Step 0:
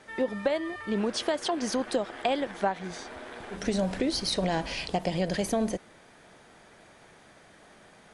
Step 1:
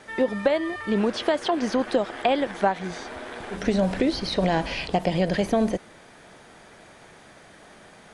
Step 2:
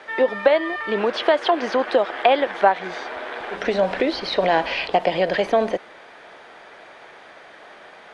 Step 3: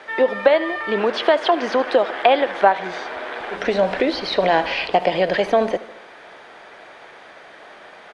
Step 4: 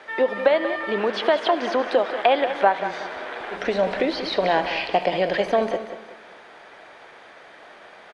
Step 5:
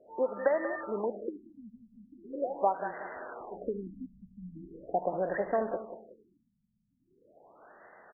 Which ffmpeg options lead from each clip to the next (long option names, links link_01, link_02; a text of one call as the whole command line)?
ffmpeg -i in.wav -filter_complex "[0:a]acrossover=split=3900[link_01][link_02];[link_02]acompressor=threshold=-50dB:ratio=4:attack=1:release=60[link_03];[link_01][link_03]amix=inputs=2:normalize=0,volume=5.5dB" out.wav
ffmpeg -i in.wav -filter_complex "[0:a]acrossover=split=370 4300:gain=0.126 1 0.112[link_01][link_02][link_03];[link_01][link_02][link_03]amix=inputs=3:normalize=0,volume=7dB" out.wav
ffmpeg -i in.wav -af "aecho=1:1:76|152|228|304|380:0.126|0.073|0.0424|0.0246|0.0142,volume=1.5dB" out.wav
ffmpeg -i in.wav -af "aecho=1:1:186|372|558|744:0.282|0.0958|0.0326|0.0111,volume=-3.5dB" out.wav
ffmpeg -i in.wav -af "afftfilt=real='re*lt(b*sr/1024,220*pow(2100/220,0.5+0.5*sin(2*PI*0.41*pts/sr)))':imag='im*lt(b*sr/1024,220*pow(2100/220,0.5+0.5*sin(2*PI*0.41*pts/sr)))':win_size=1024:overlap=0.75,volume=-9dB" out.wav